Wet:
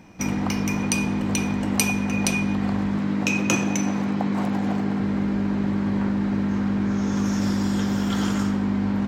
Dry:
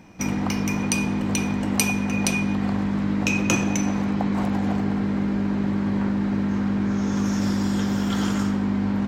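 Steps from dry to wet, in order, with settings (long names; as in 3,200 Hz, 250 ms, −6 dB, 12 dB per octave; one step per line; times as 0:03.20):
0:02.98–0:05.00: high-pass filter 120 Hz 12 dB per octave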